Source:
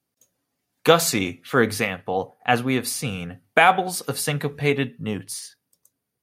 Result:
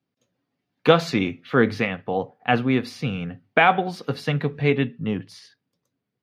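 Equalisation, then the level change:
high-pass filter 120 Hz
high-frequency loss of the air 280 metres
parametric band 880 Hz −6 dB 3 octaves
+5.5 dB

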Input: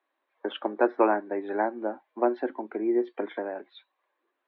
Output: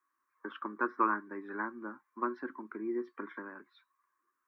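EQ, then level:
drawn EQ curve 150 Hz 0 dB, 350 Hz −10 dB, 730 Hz −28 dB, 1,100 Hz +5 dB, 3,400 Hz −18 dB, 5,600 Hz +3 dB
0.0 dB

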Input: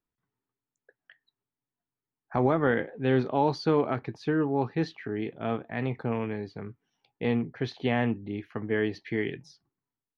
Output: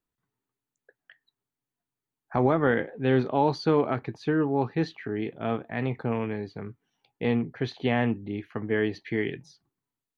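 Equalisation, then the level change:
notch filter 5,300 Hz, Q 10
+1.5 dB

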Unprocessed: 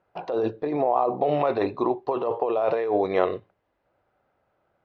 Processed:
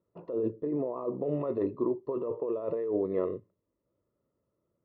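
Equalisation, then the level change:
moving average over 57 samples
low-shelf EQ 78 Hz −11 dB
0.0 dB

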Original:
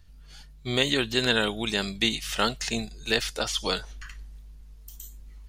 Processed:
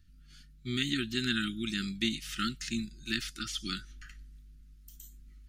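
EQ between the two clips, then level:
linear-phase brick-wall band-stop 380–1,200 Hz
parametric band 210 Hz +6.5 dB 1.4 octaves
−8.0 dB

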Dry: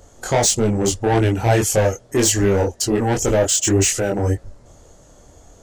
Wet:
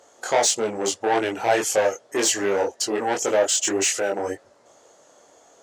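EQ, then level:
high-pass filter 480 Hz 12 dB per octave
high-shelf EQ 9,500 Hz −12 dB
0.0 dB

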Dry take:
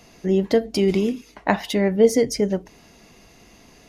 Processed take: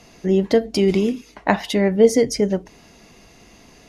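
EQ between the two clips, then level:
low-pass filter 12,000 Hz 12 dB per octave
+2.0 dB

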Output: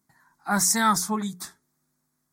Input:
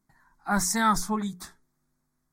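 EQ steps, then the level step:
high-pass filter 88 Hz 12 dB per octave
high-shelf EQ 3,900 Hz +6.5 dB
+1.0 dB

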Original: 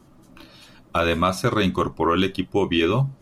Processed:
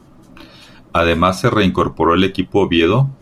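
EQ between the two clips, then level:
high-shelf EQ 6,400 Hz −6 dB
+7.0 dB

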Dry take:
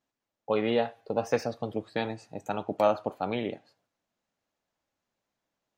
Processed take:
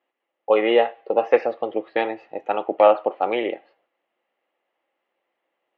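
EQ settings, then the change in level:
loudspeaker in its box 350–3,200 Hz, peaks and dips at 350 Hz +10 dB, 520 Hz +9 dB, 790 Hz +7 dB, 1,200 Hz +5 dB, 2,000 Hz +9 dB, 2,900 Hz +8 dB
notch filter 1,500 Hz, Q 26
+3.0 dB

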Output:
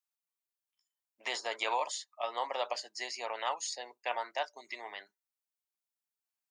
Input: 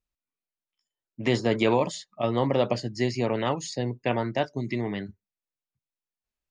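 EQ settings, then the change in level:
four-pole ladder high-pass 650 Hz, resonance 35%
high-shelf EQ 4,900 Hz +11 dB
0.0 dB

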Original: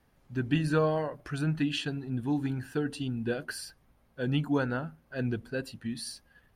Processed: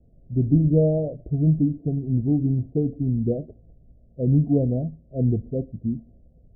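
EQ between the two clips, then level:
Chebyshev low-pass filter 680 Hz, order 6
low-shelf EQ 170 Hz +11.5 dB
+5.0 dB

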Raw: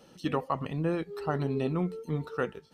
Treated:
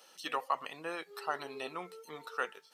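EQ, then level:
high-pass filter 850 Hz 12 dB per octave
high-shelf EQ 5,800 Hz +6.5 dB
+1.0 dB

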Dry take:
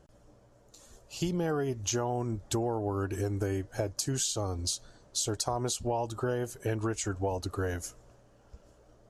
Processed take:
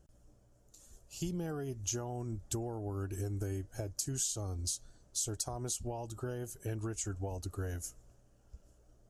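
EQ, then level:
octave-band graphic EQ 125/250/500/1,000/2,000/4,000 Hz −4/−5/−8/−10/−8/−8 dB
0.0 dB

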